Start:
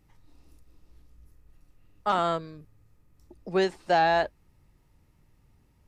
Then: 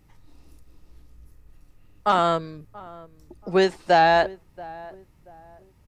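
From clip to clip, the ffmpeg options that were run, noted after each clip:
-filter_complex "[0:a]asplit=2[s0][s1];[s1]adelay=681,lowpass=f=1200:p=1,volume=0.106,asplit=2[s2][s3];[s3]adelay=681,lowpass=f=1200:p=1,volume=0.34,asplit=2[s4][s5];[s5]adelay=681,lowpass=f=1200:p=1,volume=0.34[s6];[s0][s2][s4][s6]amix=inputs=4:normalize=0,volume=1.88"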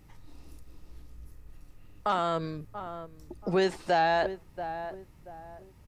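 -af "alimiter=limit=0.112:level=0:latency=1:release=77,volume=1.26"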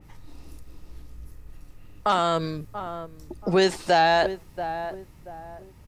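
-af "adynamicequalizer=threshold=0.00631:dfrequency=3000:dqfactor=0.7:tfrequency=3000:tqfactor=0.7:attack=5:release=100:ratio=0.375:range=3:mode=boostabove:tftype=highshelf,volume=1.88"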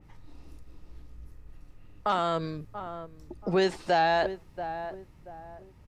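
-af "lowpass=f=3900:p=1,volume=0.596"

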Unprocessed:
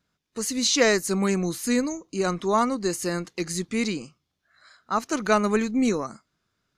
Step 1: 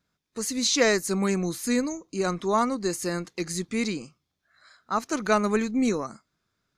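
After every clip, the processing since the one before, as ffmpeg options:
-af "bandreject=f=2900:w=18,volume=0.841"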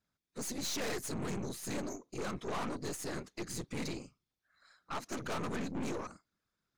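-af "afftfilt=real='hypot(re,im)*cos(2*PI*random(0))':imag='hypot(re,im)*sin(2*PI*random(1))':win_size=512:overlap=0.75,aeval=exprs='(tanh(63.1*val(0)+0.7)-tanh(0.7))/63.1':c=same,volume=1.12"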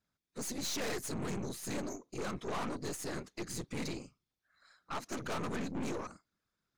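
-af anull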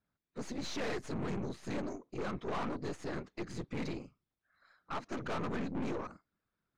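-af "adynamicsmooth=sensitivity=4:basefreq=3100,volume=1.12"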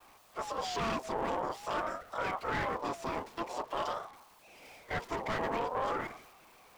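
-af "aeval=exprs='val(0)+0.5*0.00282*sgn(val(0))':c=same,agate=range=0.0224:threshold=0.00158:ratio=3:detection=peak,aeval=exprs='val(0)*sin(2*PI*810*n/s+810*0.2/0.47*sin(2*PI*0.47*n/s))':c=same,volume=1.78"

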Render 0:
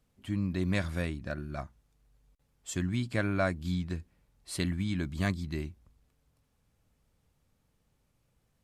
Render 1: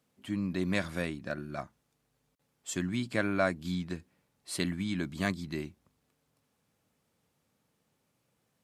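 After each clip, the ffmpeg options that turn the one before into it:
-af "highpass=170,volume=1.19"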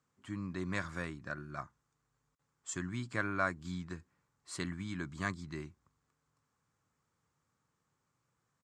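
-af "firequalizer=gain_entry='entry(140,0);entry(200,-7);entry(350,-4);entry(620,-8);entry(1100,5);entry(2600,-7);entry(3700,-7);entry(7300,1);entry(11000,-18)':delay=0.05:min_phase=1,volume=0.75"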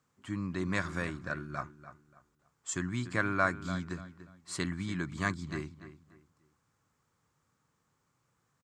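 -filter_complex "[0:a]asplit=2[s0][s1];[s1]adelay=291,lowpass=f=3100:p=1,volume=0.224,asplit=2[s2][s3];[s3]adelay=291,lowpass=f=3100:p=1,volume=0.3,asplit=2[s4][s5];[s5]adelay=291,lowpass=f=3100:p=1,volume=0.3[s6];[s0][s2][s4][s6]amix=inputs=4:normalize=0,volume=1.68"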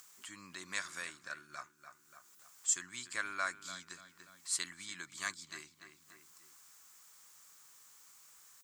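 -af "aderivative,acompressor=mode=upward:threshold=0.00251:ratio=2.5,volume=2.24"

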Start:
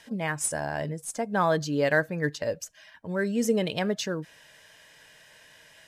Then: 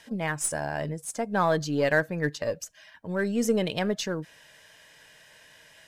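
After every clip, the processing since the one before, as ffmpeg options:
-af "aeval=exprs='0.282*(cos(1*acos(clip(val(0)/0.282,-1,1)))-cos(1*PI/2))+0.00501*(cos(8*acos(clip(val(0)/0.282,-1,1)))-cos(8*PI/2))':c=same"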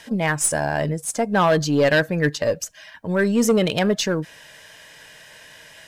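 -af "aeval=exprs='0.282*sin(PI/2*1.78*val(0)/0.282)':c=same"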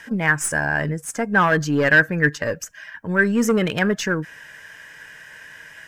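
-af "equalizer=f=630:t=o:w=0.67:g=-6,equalizer=f=1600:t=o:w=0.67:g=9,equalizer=f=4000:t=o:w=0.67:g=-9,equalizer=f=10000:t=o:w=0.67:g=-5"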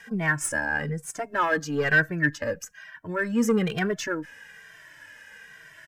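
-filter_complex "[0:a]asplit=2[s0][s1];[s1]adelay=2.1,afreqshift=-1.1[s2];[s0][s2]amix=inputs=2:normalize=1,volume=0.708"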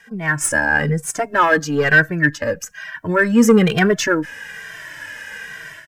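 -af "dynaudnorm=f=220:g=3:m=5.96,volume=0.891"

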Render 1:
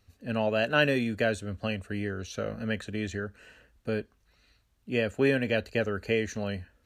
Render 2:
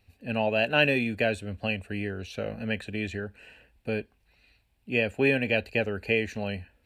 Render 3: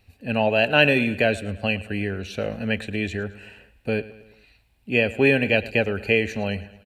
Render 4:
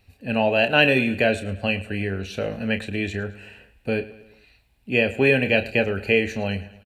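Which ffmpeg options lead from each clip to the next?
-af "equalizer=f=800:t=o:w=0.33:g=6,equalizer=f=1250:t=o:w=0.33:g=-9,equalizer=f=2500:t=o:w=0.33:g=9,equalizer=f=6300:t=o:w=0.33:g=-10"
-af "aecho=1:1:109|218|327|436:0.126|0.0667|0.0354|0.0187,volume=1.88"
-filter_complex "[0:a]asplit=2[s0][s1];[s1]adelay=31,volume=0.316[s2];[s0][s2]amix=inputs=2:normalize=0"

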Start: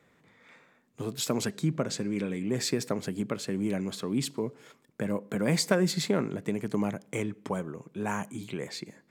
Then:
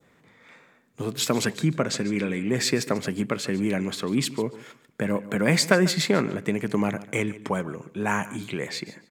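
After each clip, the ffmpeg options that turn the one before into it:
-af "adynamicequalizer=threshold=0.00398:dfrequency=2000:dqfactor=0.87:tfrequency=2000:tqfactor=0.87:attack=5:release=100:ratio=0.375:range=3:mode=boostabove:tftype=bell,aecho=1:1:144|288:0.133|0.0267,volume=1.68"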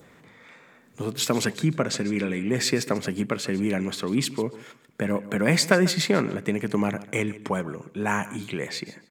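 -af "acompressor=mode=upward:threshold=0.00562:ratio=2.5"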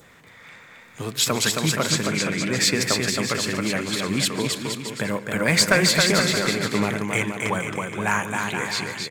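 -filter_complex "[0:a]equalizer=f=280:w=0.41:g=-9,asplit=2[s0][s1];[s1]aeval=exprs='0.119*(abs(mod(val(0)/0.119+3,4)-2)-1)':c=same,volume=0.282[s2];[s0][s2]amix=inputs=2:normalize=0,aecho=1:1:270|472.5|624.4|738.3|823.7:0.631|0.398|0.251|0.158|0.1,volume=1.58"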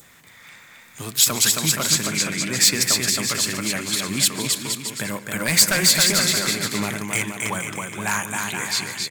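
-af "asoftclip=type=hard:threshold=0.211,crystalizer=i=2.5:c=0,equalizer=f=470:t=o:w=0.45:g=-5.5,volume=0.75"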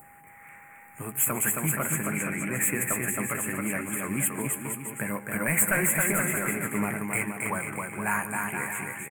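-filter_complex "[0:a]aeval=exprs='val(0)+0.00398*sin(2*PI*810*n/s)':c=same,asuperstop=centerf=4600:order=8:qfactor=0.79,asplit=2[s0][s1];[s1]adelay=14,volume=0.299[s2];[s0][s2]amix=inputs=2:normalize=0,volume=0.668"

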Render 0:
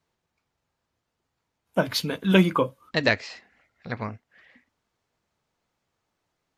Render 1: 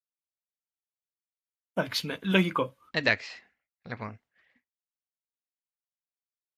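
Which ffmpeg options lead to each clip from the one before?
-af "adynamicequalizer=threshold=0.0141:dfrequency=2300:dqfactor=0.71:tfrequency=2300:tqfactor=0.71:attack=5:release=100:ratio=0.375:range=3:mode=boostabove:tftype=bell,agate=range=0.0224:threshold=0.00398:ratio=3:detection=peak,volume=0.473"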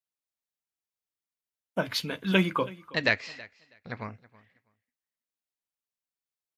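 -af "aecho=1:1:324|648:0.0891|0.016"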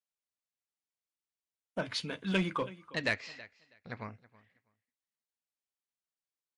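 -filter_complex "[0:a]asplit=2[s0][s1];[s1]aeval=exprs='0.0631*(abs(mod(val(0)/0.0631+3,4)-2)-1)':c=same,volume=0.355[s2];[s0][s2]amix=inputs=2:normalize=0,aresample=22050,aresample=44100,volume=0.422"

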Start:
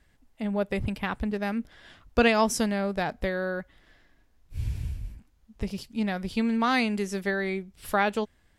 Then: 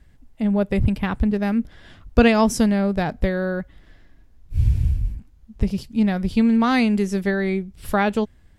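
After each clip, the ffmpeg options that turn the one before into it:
-af "lowshelf=f=300:g=11.5,volume=1.26"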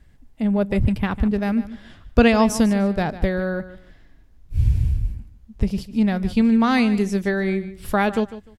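-af "aecho=1:1:150|300:0.178|0.0391"

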